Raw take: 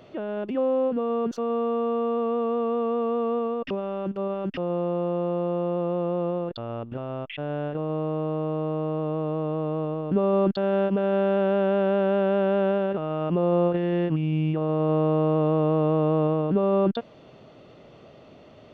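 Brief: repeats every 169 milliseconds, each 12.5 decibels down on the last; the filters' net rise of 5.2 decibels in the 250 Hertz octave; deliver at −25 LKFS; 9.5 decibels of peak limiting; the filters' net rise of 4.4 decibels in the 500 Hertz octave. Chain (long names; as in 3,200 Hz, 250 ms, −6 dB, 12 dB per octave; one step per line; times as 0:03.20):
parametric band 250 Hz +6.5 dB
parametric band 500 Hz +3.5 dB
brickwall limiter −17 dBFS
repeating echo 169 ms, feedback 24%, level −12.5 dB
level −1 dB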